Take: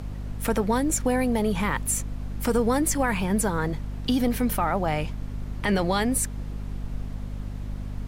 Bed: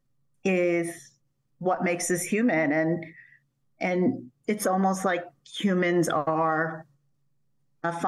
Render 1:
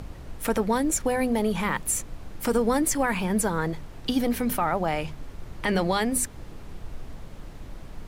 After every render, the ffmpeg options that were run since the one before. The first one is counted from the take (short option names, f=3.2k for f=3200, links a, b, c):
-af "bandreject=f=50:t=h:w=6,bandreject=f=100:t=h:w=6,bandreject=f=150:t=h:w=6,bandreject=f=200:t=h:w=6,bandreject=f=250:t=h:w=6"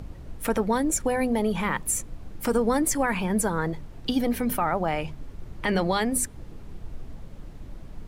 -af "afftdn=nr=6:nf=-43"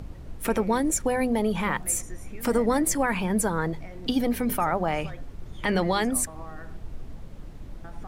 -filter_complex "[1:a]volume=-19dB[a];[0:a][a]amix=inputs=2:normalize=0"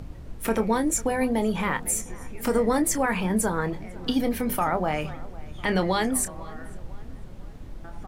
-filter_complex "[0:a]asplit=2[a][b];[b]adelay=27,volume=-10.5dB[c];[a][c]amix=inputs=2:normalize=0,asplit=2[d][e];[e]adelay=500,lowpass=f=2.5k:p=1,volume=-20dB,asplit=2[f][g];[g]adelay=500,lowpass=f=2.5k:p=1,volume=0.52,asplit=2[h][i];[i]adelay=500,lowpass=f=2.5k:p=1,volume=0.52,asplit=2[j][k];[k]adelay=500,lowpass=f=2.5k:p=1,volume=0.52[l];[d][f][h][j][l]amix=inputs=5:normalize=0"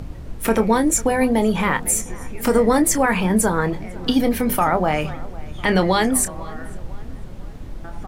-af "volume=6.5dB"